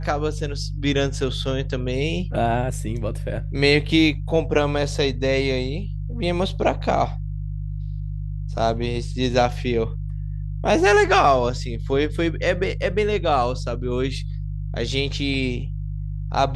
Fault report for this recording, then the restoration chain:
mains hum 50 Hz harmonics 3 −28 dBFS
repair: hum removal 50 Hz, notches 3

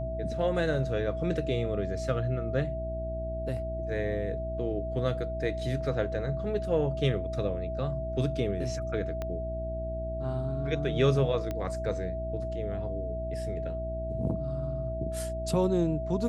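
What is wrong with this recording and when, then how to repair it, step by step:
mains hum 60 Hz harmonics 6 −36 dBFS
whistle 650 Hz −34 dBFS
0:09.22: click −21 dBFS
0:11.51: click −20 dBFS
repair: click removal
hum removal 60 Hz, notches 6
notch filter 650 Hz, Q 30

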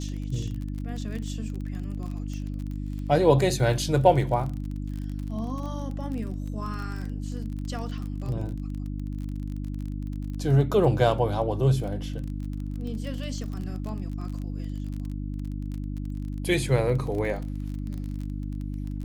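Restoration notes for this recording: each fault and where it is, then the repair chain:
surface crackle 29 per second −33 dBFS
mains hum 50 Hz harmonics 6 −32 dBFS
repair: click removal
hum removal 50 Hz, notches 6

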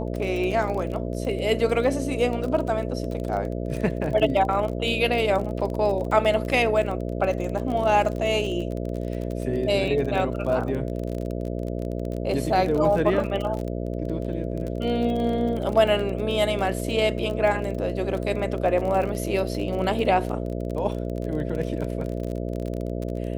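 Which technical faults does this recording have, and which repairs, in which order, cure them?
mains buzz 60 Hz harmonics 11 −29 dBFS
surface crackle 33 per second −29 dBFS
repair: click removal
hum removal 60 Hz, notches 11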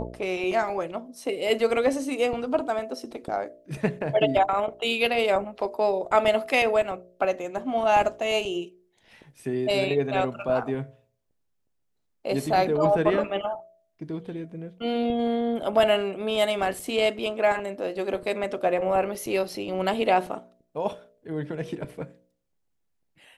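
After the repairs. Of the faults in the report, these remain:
none of them is left

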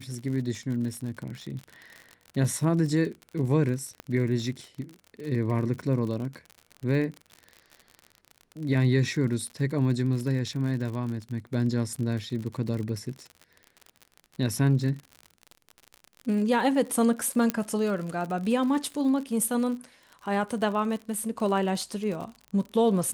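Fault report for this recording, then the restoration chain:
surface crackle 55 per second −34 dBFS
0:04.00: click −22 dBFS
0:17.50: click −10 dBFS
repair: click removal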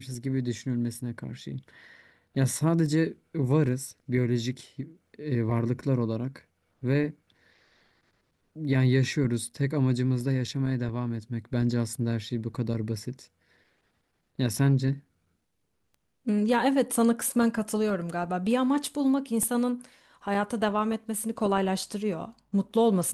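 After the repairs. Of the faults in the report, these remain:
0:04.00: click

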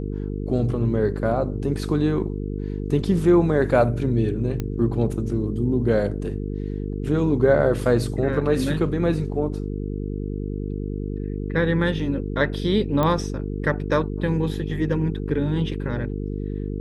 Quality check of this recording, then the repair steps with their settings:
mains buzz 50 Hz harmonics 9 −28 dBFS
0:04.60: click −14 dBFS
0:13.03: click −11 dBFS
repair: click removal
hum removal 50 Hz, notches 9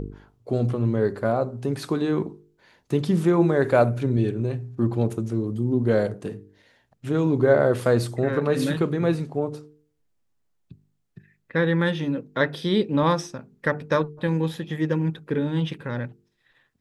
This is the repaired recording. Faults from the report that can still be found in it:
none of them is left

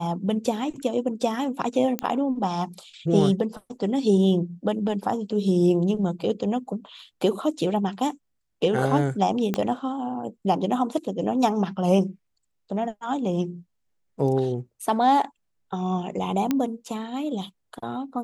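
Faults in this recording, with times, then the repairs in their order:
0:01.99: click −10 dBFS
0:09.54: click −11 dBFS
0:16.51: click −10 dBFS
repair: click removal

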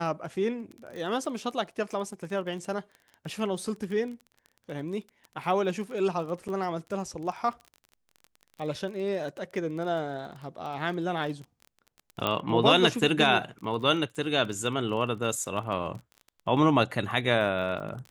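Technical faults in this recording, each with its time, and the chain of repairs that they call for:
surface crackle 26 per second −37 dBFS
0:06.48–0:06.49: drop-out 7.6 ms
0:12.27: click −13 dBFS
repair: click removal
repair the gap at 0:06.48, 7.6 ms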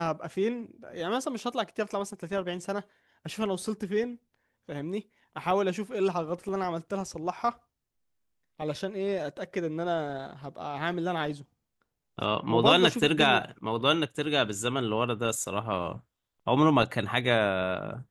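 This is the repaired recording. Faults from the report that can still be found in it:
none of them is left

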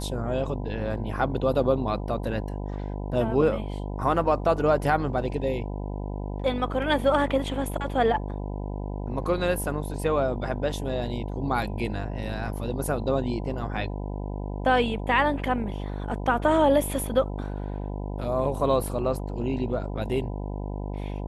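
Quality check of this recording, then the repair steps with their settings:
mains buzz 50 Hz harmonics 20 −32 dBFS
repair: hum removal 50 Hz, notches 20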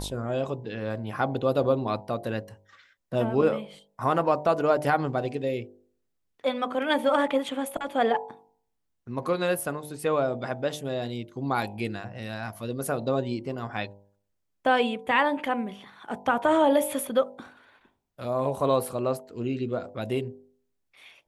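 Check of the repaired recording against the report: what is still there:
none of them is left

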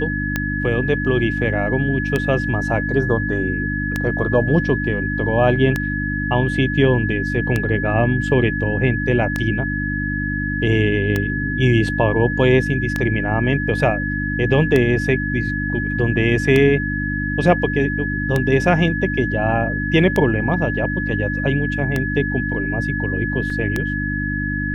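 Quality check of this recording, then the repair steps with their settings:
mains hum 50 Hz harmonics 6 −24 dBFS
scratch tick 33 1/3 rpm −6 dBFS
whistle 1,700 Hz −24 dBFS
0:23.50: drop-out 3.3 ms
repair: click removal
notch filter 1,700 Hz, Q 30
hum removal 50 Hz, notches 6
repair the gap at 0:23.50, 3.3 ms

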